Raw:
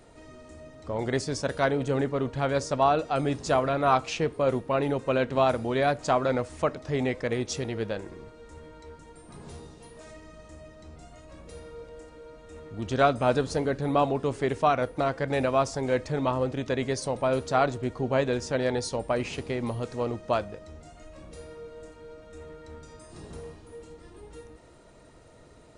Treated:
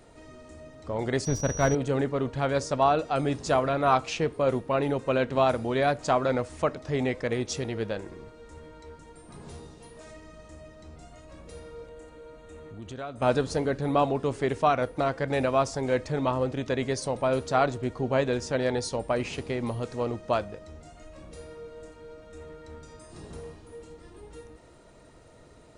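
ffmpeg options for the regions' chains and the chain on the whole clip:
-filter_complex "[0:a]asettb=1/sr,asplit=3[s0][s1][s2];[s0]atrim=end=1.254[s3];[s1]atrim=start=1.25:end=1.75,asetpts=PTS-STARTPTS,afade=t=in:d=0.004:c=qsin,afade=t=out:st=0.496:d=0.004:c=qsin,aemphasis=mode=reproduction:type=bsi,aeval=exprs='sgn(val(0))*max(abs(val(0))-0.01,0)':c=same,aeval=exprs='val(0)+0.0158*sin(2*PI*5800*n/s)':c=same[s4];[s2]atrim=start=1.746[s5];[s3][s4]acrossfade=d=0.004:c1=hsin:c2=qsin[s6];[s6][s5]acrossfade=d=0.004:c1=qsin:c2=hsin,asettb=1/sr,asplit=3[s7][s8][s9];[s7]atrim=end=11.864[s10];[s8]atrim=start=11.86:end=13.22,asetpts=PTS-STARTPTS,afade=t=in:d=0.004:c=qsin,afade=t=out:st=1.356:d=0.004:c=qsin,equalizer=f=5200:w=6.6:g=-11,acompressor=threshold=0.00891:ratio=2.5:attack=3.2:release=140:knee=1:detection=peak[s11];[s9]atrim=start=13.216[s12];[s10][s11]acrossfade=d=0.004:c1=hsin:c2=qsin[s13];[s13][s12]acrossfade=d=0.004:c1=qsin:c2=hsin"

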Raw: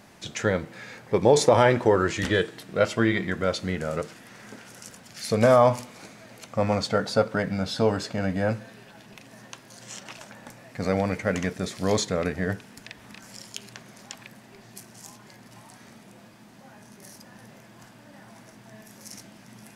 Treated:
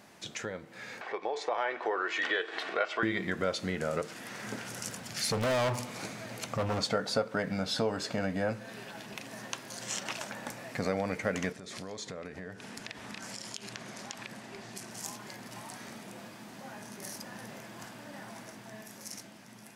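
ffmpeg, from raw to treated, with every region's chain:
-filter_complex "[0:a]asettb=1/sr,asplit=3[s0][s1][s2];[s0]atrim=end=1.014[s3];[s1]atrim=start=1.01:end=3.03,asetpts=PTS-STARTPTS,afade=t=in:d=0.004:c=qsin,afade=t=out:st=2.016:d=0.004:c=qsin,aecho=1:1:2.7:0.38,atrim=end_sample=89082,acompressor=mode=upward:threshold=0.0708:ratio=2.5:attack=3.2:release=140:knee=2.83:detection=peak,highpass=690,lowpass=3000[s4];[s2]atrim=start=3.026[s5];[s3][s4]acrossfade=d=0.004:c1=hsin:c2=qsin[s6];[s6][s5]acrossfade=d=0.004:c1=qsin:c2=hsin,asettb=1/sr,asplit=3[s7][s8][s9];[s7]atrim=end=4.434[s10];[s8]atrim=start=4.43:end=6.79,asetpts=PTS-STARTPTS,afade=t=in:d=0.004:c=qsin,afade=t=out:st=2.356:d=0.004:c=qsin,equalizer=f=110:t=o:w=1.3:g=7.5,volume=16.8,asoftclip=hard,volume=0.0596[s11];[s9]atrim=start=6.786[s12];[s10][s11]acrossfade=d=0.004:c1=hsin:c2=qsin[s13];[s13][s12]acrossfade=d=0.004:c1=qsin:c2=hsin,asettb=1/sr,asplit=3[s14][s15][s16];[s14]atrim=end=11.524[s17];[s15]atrim=start=11.52:end=14.91,asetpts=PTS-STARTPTS,afade=t=in:d=0.004:c=qsin,afade=t=out:st=3.386:d=0.004:c=qsin,lowpass=9700,acompressor=threshold=0.00891:ratio=10:attack=3.2:release=140:knee=1:detection=peak[s18];[s16]atrim=start=14.906[s19];[s17][s18]acrossfade=d=0.004:c1=hsin:c2=qsin[s20];[s20][s19]acrossfade=d=0.004:c1=qsin:c2=hsin,acompressor=threshold=0.02:ratio=3,lowshelf=f=120:g=-11,dynaudnorm=f=270:g=11:m=2.51,volume=0.708"

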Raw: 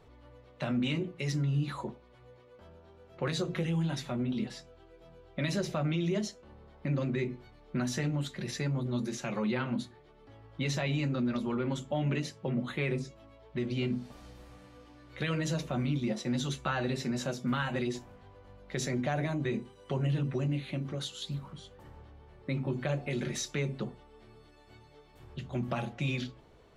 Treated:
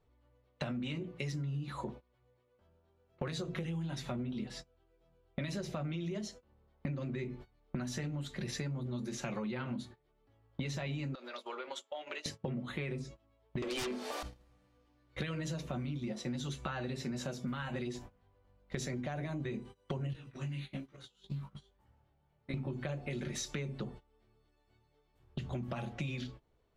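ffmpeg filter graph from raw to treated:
-filter_complex "[0:a]asettb=1/sr,asplit=3[s0][s1][s2];[s0]atrim=end=11.154[s3];[s1]atrim=start=11.15:end=12.26,asetpts=PTS-STARTPTS,afade=t=in:d=0.004:c=qsin,afade=t=out:st=1.106:d=0.004:c=qsin,highpass=f=490:w=0.5412,highpass=f=490:w=1.3066,equalizer=f=4000:t=o:w=1.1:g=5,acompressor=threshold=0.00794:ratio=12:attack=3.2:release=140:knee=1:detection=peak[s4];[s2]atrim=start=12.256[s5];[s3][s4]acrossfade=d=0.004:c1=hsin:c2=qsin[s6];[s6][s5]acrossfade=d=0.004:c1=qsin:c2=hsin,asettb=1/sr,asplit=3[s7][s8][s9];[s7]atrim=end=13.624[s10];[s8]atrim=start=13.62:end=14.23,asetpts=PTS-STARTPTS,afade=t=in:d=0.004:c=qsin,afade=t=out:st=0.606:d=0.004:c=qsin,highpass=f=400:w=0.5412,highpass=f=400:w=1.3066,aeval=exprs='0.0447*sin(PI/2*3.55*val(0)/0.0447)':c=same[s11];[s9]atrim=start=14.226[s12];[s10][s11]acrossfade=d=0.004:c1=hsin:c2=qsin[s13];[s13][s12]acrossfade=d=0.004:c1=qsin:c2=hsin,asettb=1/sr,asplit=3[s14][s15][s16];[s14]atrim=end=20.134[s17];[s15]atrim=start=20.13:end=22.54,asetpts=PTS-STARTPTS,afade=t=in:d=0.004:c=qsin,afade=t=out:st=2.406:d=0.004:c=qsin,acrossover=split=1100|3800[s18][s19][s20];[s18]acompressor=threshold=0.00631:ratio=4[s21];[s19]acompressor=threshold=0.00251:ratio=4[s22];[s20]acompressor=threshold=0.00112:ratio=4[s23];[s21][s22][s23]amix=inputs=3:normalize=0,asplit=2[s24][s25];[s25]adelay=15,volume=0.708[s26];[s24][s26]amix=inputs=2:normalize=0,atrim=end_sample=106281,flanger=delay=17:depth=4.4:speed=1.2[s27];[s16]atrim=start=22.536[s28];[s17][s27]acrossfade=d=0.004:c1=hsin:c2=qsin[s29];[s29][s28]acrossfade=d=0.004:c1=qsin:c2=hsin,agate=range=0.0631:threshold=0.00501:ratio=16:detection=peak,lowshelf=f=75:g=7.5,acompressor=threshold=0.00708:ratio=8,volume=2.24"

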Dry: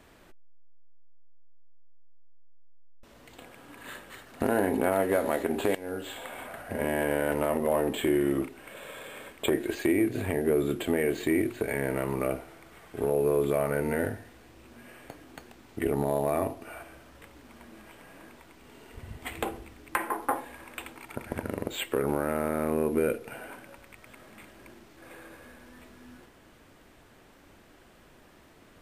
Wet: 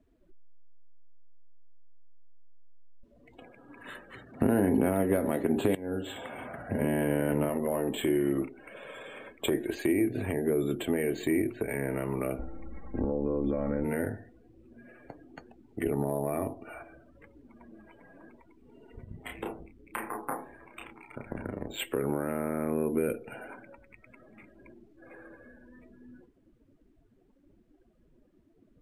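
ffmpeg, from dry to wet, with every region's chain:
-filter_complex "[0:a]asettb=1/sr,asplit=3[s0][s1][s2];[s0]atrim=end=4.134[s3];[s1]atrim=start=4.13:end=7.49,asetpts=PTS-STARTPTS,afade=t=in:d=0.004:c=qsin,afade=t=out:st=3.356:d=0.004:c=qsin,highpass=77,lowshelf=f=250:g=10.5[s4];[s2]atrim=start=7.486[s5];[s3][s4]acrossfade=d=0.004:c1=hsin:c2=qsin[s6];[s6][s5]acrossfade=d=0.004:c1=qsin:c2=hsin,asettb=1/sr,asplit=3[s7][s8][s9];[s7]atrim=end=12.394[s10];[s8]atrim=start=12.39:end=13.84,asetpts=PTS-STARTPTS,afade=t=in:d=0.004:c=qsin,afade=t=out:st=1.446:d=0.004:c=qsin,aemphasis=mode=reproduction:type=riaa,aecho=1:1:3.7:0.79,atrim=end_sample=63945,acompressor=threshold=0.0631:ratio=3:attack=3.2:release=140:knee=1:detection=peak[s11];[s9]atrim=start=13.836[s12];[s10][s11]acrossfade=d=0.004:c1=hsin:c2=qsin[s13];[s13][s12]acrossfade=d=0.004:c1=qsin:c2=hsin,asettb=1/sr,asplit=3[s14][s15][s16];[s14]atrim=end=19.044[s17];[s15]atrim=start=19.04:end=21.8,asetpts=PTS-STARTPTS,afade=t=in:d=0.004:c=qsin,afade=t=out:st=2.756:d=0.004:c=qsin,tremolo=f=110:d=0.857,asplit=2[s18][s19];[s19]adelay=31,volume=0.708[s20];[s18][s20]amix=inputs=2:normalize=0,atrim=end_sample=121716[s21];[s16]atrim=start=21.796[s22];[s17][s21]acrossfade=d=0.004:c1=hsin:c2=qsin[s23];[s23][s22]acrossfade=d=0.004:c1=qsin:c2=hsin,afftdn=nr=25:nf=-47,equalizer=f=75:t=o:w=0.29:g=-8.5,acrossover=split=380|3000[s24][s25][s26];[s25]acompressor=threshold=0.00794:ratio=1.5[s27];[s24][s27][s26]amix=inputs=3:normalize=0"

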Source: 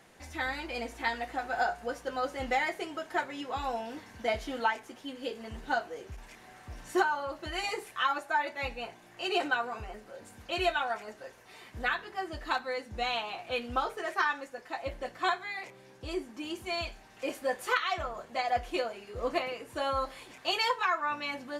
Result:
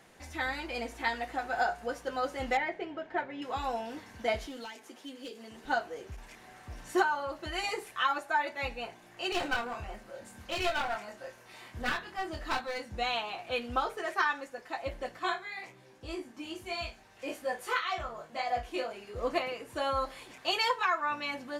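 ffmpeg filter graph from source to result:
-filter_complex "[0:a]asettb=1/sr,asplit=3[s0][s1][s2];[s0]atrim=end=2.574[s3];[s1]atrim=start=2.57:end=3.42,asetpts=PTS-STARTPTS,afade=t=in:d=0.004:c=qsin,afade=t=out:st=0.846:d=0.004:c=qsin,lowpass=2300,equalizer=f=1200:w=2.7:g=-7[s4];[s2]atrim=start=3.416[s5];[s3][s4]acrossfade=d=0.004:c1=hsin:c2=qsin[s6];[s6][s5]acrossfade=d=0.004:c1=qsin:c2=hsin,asettb=1/sr,asplit=3[s7][s8][s9];[s7]atrim=end=4.464[s10];[s8]atrim=start=4.46:end=5.65,asetpts=PTS-STARTPTS,afade=t=in:d=0.004:c=qsin,afade=t=out:st=1.186:d=0.004:c=qsin,highpass=240,acrossover=split=360|3000[s11][s12][s13];[s12]acompressor=threshold=0.002:ratio=2.5:attack=3.2:release=140:knee=2.83:detection=peak[s14];[s11][s14][s13]amix=inputs=3:normalize=0,asoftclip=type=hard:threshold=0.0133[s15];[s9]atrim=start=5.646[s16];[s10][s15]acrossfade=d=0.004:c1=hsin:c2=qsin[s17];[s17][s16]acrossfade=d=0.004:c1=qsin:c2=hsin,asettb=1/sr,asplit=3[s18][s19][s20];[s18]atrim=end=9.324[s21];[s19]atrim=start=9.32:end=12.95,asetpts=PTS-STARTPTS,afade=t=in:d=0.004:c=qsin,afade=t=out:st=3.626:d=0.004:c=qsin,bandreject=f=430:w=9.9,asplit=2[s22][s23];[s23]adelay=25,volume=0.562[s24];[s22][s24]amix=inputs=2:normalize=0,atrim=end_sample=160083,aeval=exprs='clip(val(0),-1,0.0168)':c=same[s25];[s20]atrim=start=12.946[s26];[s21][s25]acrossfade=d=0.004:c1=hsin:c2=qsin[s27];[s27][s26]acrossfade=d=0.004:c1=qsin:c2=hsin,asettb=1/sr,asplit=3[s28][s29][s30];[s28]atrim=end=15.194[s31];[s29]atrim=start=15.19:end=18.91,asetpts=PTS-STARTPTS,afade=t=in:d=0.004:c=qsin,afade=t=out:st=3.716:d=0.004:c=qsin,flanger=delay=16:depth=3.1:speed=1.8,asplit=2[s32][s33];[s33]adelay=39,volume=0.282[s34];[s32][s34]amix=inputs=2:normalize=0,atrim=end_sample=164052[s35];[s30]atrim=start=18.906[s36];[s31][s35]acrossfade=d=0.004:c1=hsin:c2=qsin[s37];[s37][s36]acrossfade=d=0.004:c1=qsin:c2=hsin"

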